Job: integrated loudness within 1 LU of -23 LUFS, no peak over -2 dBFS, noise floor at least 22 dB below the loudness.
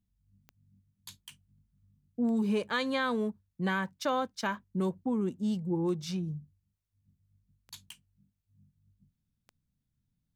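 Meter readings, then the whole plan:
clicks 6; loudness -32.0 LUFS; peak -18.0 dBFS; loudness target -23.0 LUFS
-> de-click; gain +9 dB

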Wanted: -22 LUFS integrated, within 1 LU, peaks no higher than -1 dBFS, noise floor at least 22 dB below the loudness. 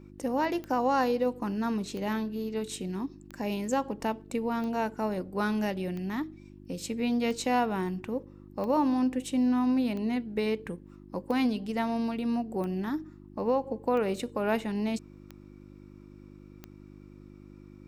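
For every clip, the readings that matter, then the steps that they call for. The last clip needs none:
clicks 13; hum 50 Hz; harmonics up to 350 Hz; hum level -44 dBFS; loudness -30.5 LUFS; peak -15.5 dBFS; loudness target -22.0 LUFS
-> de-click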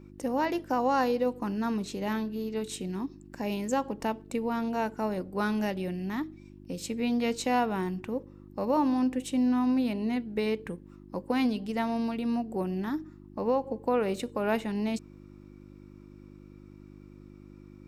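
clicks 0; hum 50 Hz; harmonics up to 350 Hz; hum level -44 dBFS
-> de-hum 50 Hz, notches 7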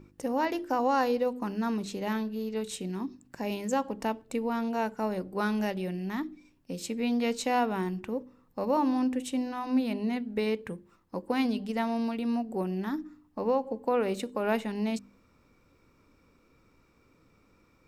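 hum none; loudness -31.0 LUFS; peak -16.0 dBFS; loudness target -22.0 LUFS
-> gain +9 dB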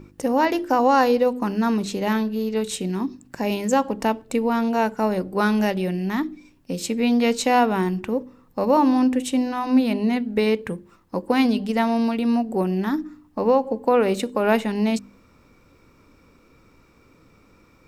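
loudness -22.0 LUFS; peak -7.0 dBFS; noise floor -56 dBFS

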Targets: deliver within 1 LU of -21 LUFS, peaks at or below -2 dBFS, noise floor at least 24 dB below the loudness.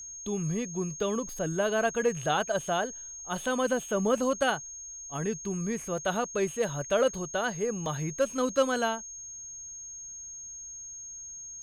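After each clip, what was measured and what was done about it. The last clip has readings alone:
dropouts 4; longest dropout 1.2 ms; steady tone 6500 Hz; tone level -40 dBFS; loudness -30.5 LUFS; peak -12.5 dBFS; loudness target -21.0 LUFS
-> interpolate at 1.29/4.18/5.98/7.86, 1.2 ms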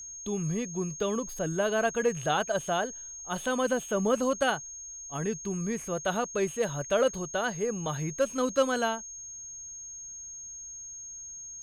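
dropouts 0; steady tone 6500 Hz; tone level -40 dBFS
-> notch 6500 Hz, Q 30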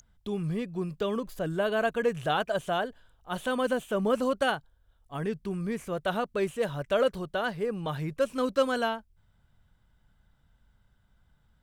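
steady tone none; loudness -30.0 LUFS; peak -13.0 dBFS; loudness target -21.0 LUFS
-> gain +9 dB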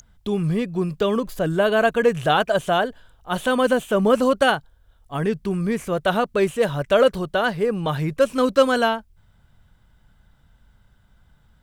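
loudness -21.0 LUFS; peak -4.0 dBFS; noise floor -58 dBFS

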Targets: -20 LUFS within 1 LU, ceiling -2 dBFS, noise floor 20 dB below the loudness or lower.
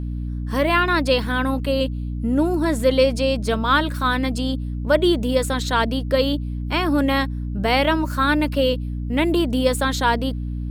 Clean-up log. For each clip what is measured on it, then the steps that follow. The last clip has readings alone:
hum 60 Hz; harmonics up to 300 Hz; hum level -24 dBFS; loudness -20.5 LUFS; peak -4.5 dBFS; loudness target -20.0 LUFS
-> notches 60/120/180/240/300 Hz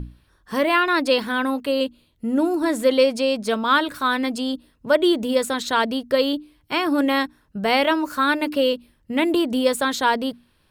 hum none; loudness -21.5 LUFS; peak -5.5 dBFS; loudness target -20.0 LUFS
-> gain +1.5 dB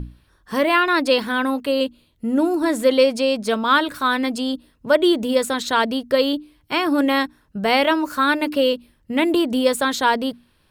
loudness -20.0 LUFS; peak -4.0 dBFS; noise floor -61 dBFS

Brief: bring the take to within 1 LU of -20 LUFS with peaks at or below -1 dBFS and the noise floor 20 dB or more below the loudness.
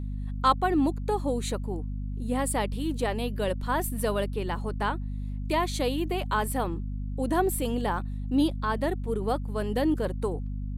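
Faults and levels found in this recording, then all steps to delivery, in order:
hum 50 Hz; harmonics up to 250 Hz; hum level -30 dBFS; loudness -29.0 LUFS; peak -8.0 dBFS; loudness target -20.0 LUFS
-> notches 50/100/150/200/250 Hz; gain +9 dB; limiter -1 dBFS

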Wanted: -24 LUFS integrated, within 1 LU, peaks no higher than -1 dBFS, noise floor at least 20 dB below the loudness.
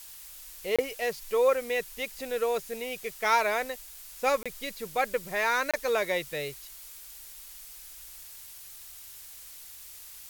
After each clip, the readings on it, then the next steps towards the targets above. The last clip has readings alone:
dropouts 3; longest dropout 26 ms; noise floor -47 dBFS; noise floor target -50 dBFS; loudness -29.5 LUFS; peak -11.5 dBFS; loudness target -24.0 LUFS
-> interpolate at 0.76/4.43/5.71, 26 ms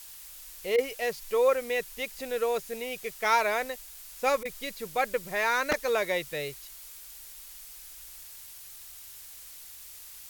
dropouts 0; noise floor -47 dBFS; noise floor target -49 dBFS
-> noise print and reduce 6 dB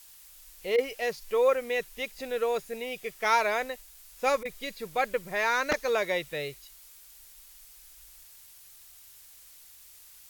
noise floor -53 dBFS; loudness -29.5 LUFS; peak -11.5 dBFS; loudness target -24.0 LUFS
-> gain +5.5 dB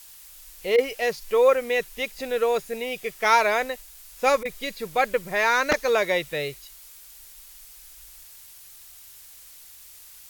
loudness -24.0 LUFS; peak -6.0 dBFS; noise floor -47 dBFS

